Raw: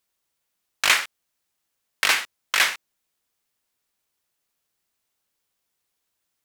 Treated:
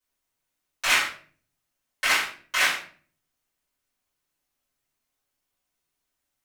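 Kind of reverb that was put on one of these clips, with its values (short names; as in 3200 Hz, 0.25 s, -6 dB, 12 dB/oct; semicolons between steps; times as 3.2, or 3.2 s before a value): shoebox room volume 41 m³, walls mixed, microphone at 2.7 m; gain -15 dB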